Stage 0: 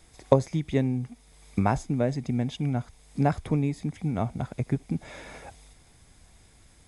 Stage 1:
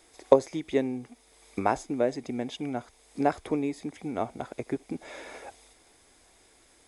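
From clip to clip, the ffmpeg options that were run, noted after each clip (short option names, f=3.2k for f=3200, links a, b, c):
-af "lowshelf=f=230:t=q:w=1.5:g=-13"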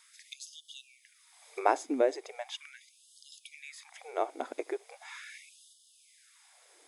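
-af "afftfilt=real='re*gte(b*sr/1024,250*pow(2900/250,0.5+0.5*sin(2*PI*0.39*pts/sr)))':imag='im*gte(b*sr/1024,250*pow(2900/250,0.5+0.5*sin(2*PI*0.39*pts/sr)))':win_size=1024:overlap=0.75"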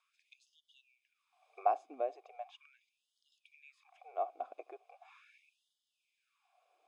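-filter_complex "[0:a]asplit=3[a][b][c];[a]bandpass=f=730:t=q:w=8,volume=0dB[d];[b]bandpass=f=1.09k:t=q:w=8,volume=-6dB[e];[c]bandpass=f=2.44k:t=q:w=8,volume=-9dB[f];[d][e][f]amix=inputs=3:normalize=0"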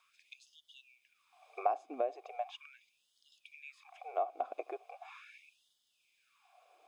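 -af "acompressor=threshold=-41dB:ratio=2.5,volume=8.5dB"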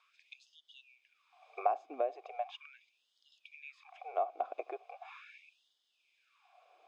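-af "highpass=330,lowpass=4.9k,volume=1dB"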